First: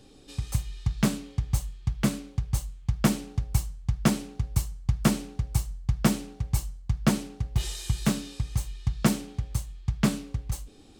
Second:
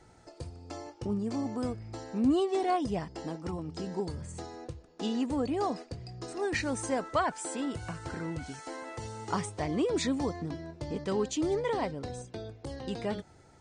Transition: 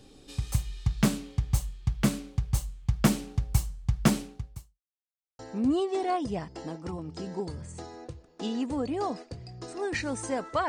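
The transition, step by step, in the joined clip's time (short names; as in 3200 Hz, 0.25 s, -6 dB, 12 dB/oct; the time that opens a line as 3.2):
first
4.18–4.81 fade out quadratic
4.81–5.39 mute
5.39 switch to second from 1.99 s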